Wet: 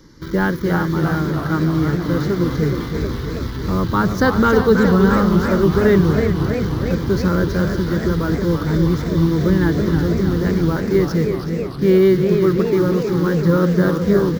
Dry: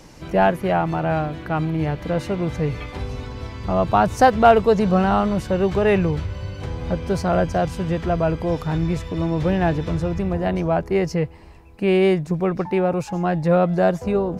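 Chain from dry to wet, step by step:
parametric band 340 Hz +5.5 dB 1.2 octaves
in parallel at −3 dB: bit reduction 5 bits
on the sum: phaser with its sweep stopped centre 2,600 Hz, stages 6
single-tap delay 373 ms −12 dB
feedback echo with a swinging delay time 319 ms, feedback 71%, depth 189 cents, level −7 dB
level −1.5 dB

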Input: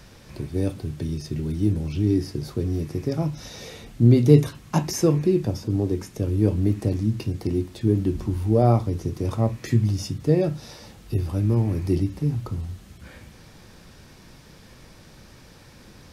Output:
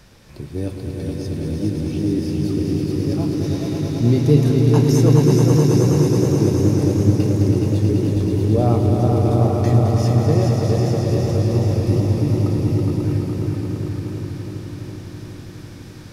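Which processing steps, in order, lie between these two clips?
echo that builds up and dies away 108 ms, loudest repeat 5, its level −6.5 dB
feedback echo with a swinging delay time 414 ms, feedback 69%, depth 59 cents, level −6.5 dB
level −1 dB

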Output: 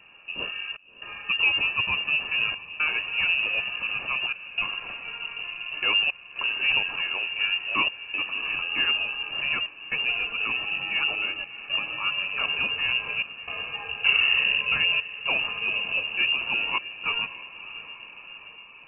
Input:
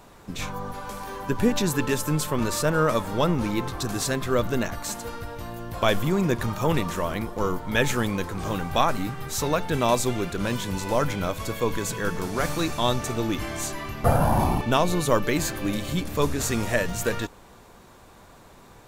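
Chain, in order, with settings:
variable-slope delta modulation 32 kbit/s
notch filter 1,300 Hz, Q 5.4
gate pattern "xxxxxx..xxxxxx" 118 BPM −60 dB
phaser with its sweep stopped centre 1,900 Hz, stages 4
feedback delay with all-pass diffusion 641 ms, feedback 63%, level −15 dB
voice inversion scrambler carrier 2,800 Hz

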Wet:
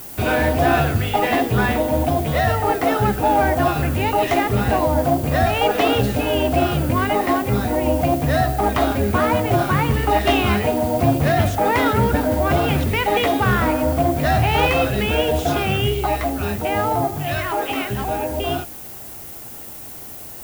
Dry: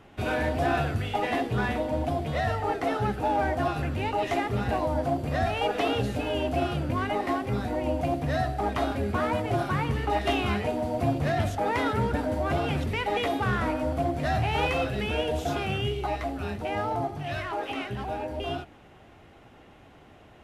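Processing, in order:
background noise violet −45 dBFS
level +9 dB

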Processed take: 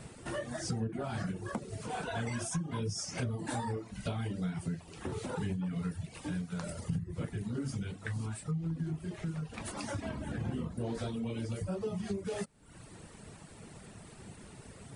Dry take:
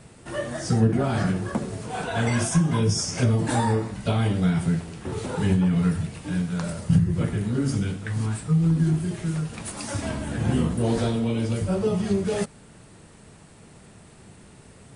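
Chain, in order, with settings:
reverb reduction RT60 0.73 s
0:08.51–0:10.95: high-shelf EQ 5,400 Hz −9.5 dB
downward compressor 3 to 1, threshold −37 dBFS, peak gain reduction 16.5 dB

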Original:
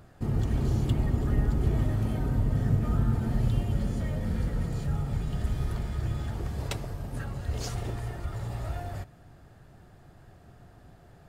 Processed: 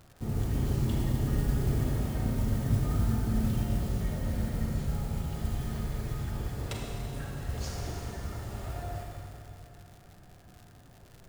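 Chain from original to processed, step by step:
noise that follows the level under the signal 23 dB
four-comb reverb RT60 2.9 s, combs from 32 ms, DRR −1 dB
surface crackle 150 per second −38 dBFS
level −5 dB

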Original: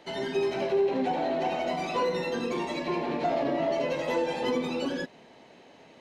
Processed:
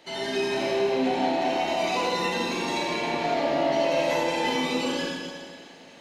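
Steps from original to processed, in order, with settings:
high-shelf EQ 2,100 Hz +9.5 dB
four-comb reverb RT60 1.9 s, combs from 27 ms, DRR −4.5 dB
level −4 dB

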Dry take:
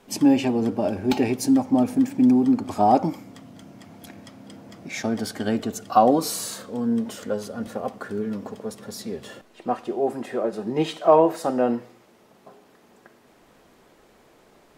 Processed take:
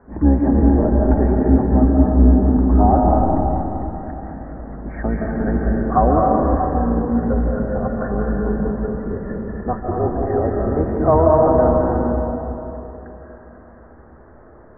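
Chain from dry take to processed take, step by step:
sub-octave generator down 2 octaves, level +3 dB
Butterworth low-pass 1,800 Hz 72 dB per octave
in parallel at 0 dB: downward compressor, threshold −29 dBFS, peak gain reduction 19 dB
on the sum: comb and all-pass reverb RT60 3.3 s, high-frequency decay 0.45×, pre-delay 120 ms, DRR −2 dB
level −1.5 dB

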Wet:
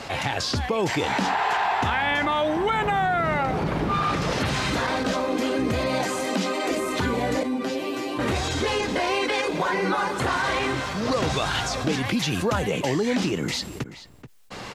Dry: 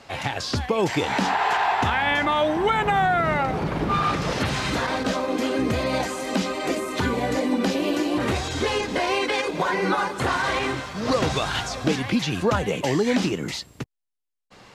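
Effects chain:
0:05.88–0:06.69: high-pass filter 79 Hz → 210 Hz 24 dB per octave
0:07.43–0:08.19: tuned comb filter 130 Hz, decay 0.16 s, harmonics all, mix 100%
0:12.05–0:12.68: high-shelf EQ 10,000 Hz +10 dB
slap from a distant wall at 74 metres, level −27 dB
envelope flattener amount 50%
level −3.5 dB

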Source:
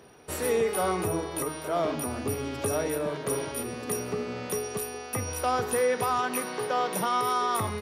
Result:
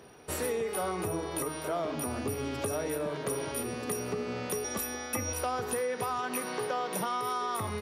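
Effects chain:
0:04.64–0:05.33: comb filter 3.5 ms, depth 99%
downward compressor, threshold −29 dBFS, peak gain reduction 8 dB

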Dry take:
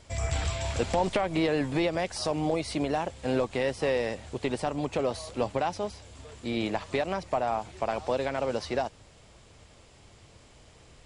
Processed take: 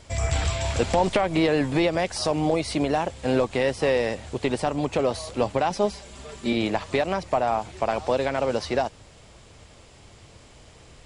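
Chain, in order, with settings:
0:05.70–0:06.53: comb filter 5.1 ms, depth 90%
level +5 dB

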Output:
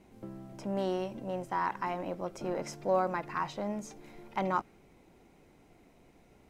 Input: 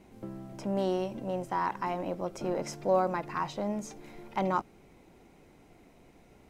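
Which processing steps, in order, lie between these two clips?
dynamic equaliser 1,700 Hz, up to +4 dB, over −43 dBFS, Q 0.95
level −3 dB

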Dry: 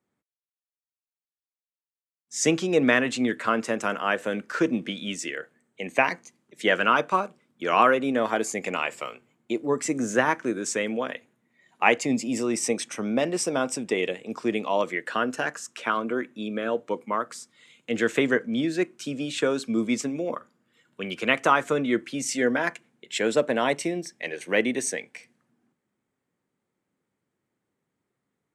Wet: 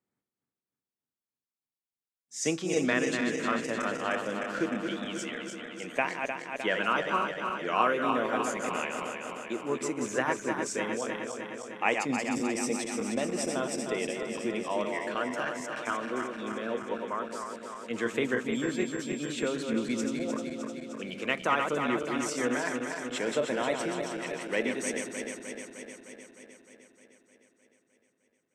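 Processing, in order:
feedback delay that plays each chunk backwards 153 ms, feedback 81%, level −5.5 dB
0:18.52–0:19.51: steady tone 7,500 Hz −40 dBFS
level −7.5 dB

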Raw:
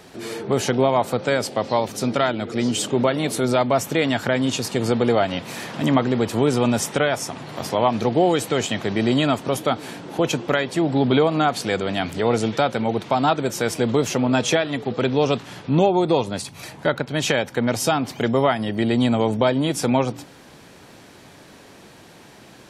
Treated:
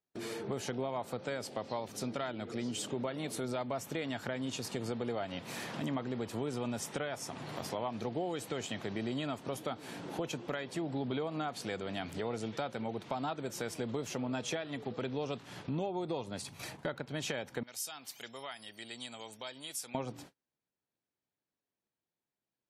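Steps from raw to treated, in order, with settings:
noise gate −39 dBFS, range −43 dB
0:17.63–0:19.95: first-order pre-emphasis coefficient 0.97
downward compressor 2.5 to 1, threshold −33 dBFS, peak gain reduction 14 dB
level −6 dB

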